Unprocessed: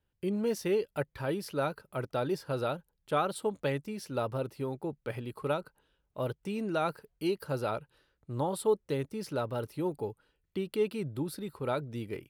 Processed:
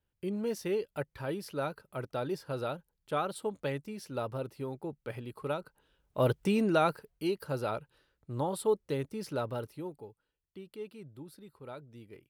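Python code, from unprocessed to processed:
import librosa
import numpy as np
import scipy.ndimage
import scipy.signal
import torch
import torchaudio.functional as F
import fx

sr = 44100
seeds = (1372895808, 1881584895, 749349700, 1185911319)

y = fx.gain(x, sr, db=fx.line((5.57, -3.0), (6.4, 9.0), (7.23, -1.0), (9.52, -1.0), (10.09, -13.0)))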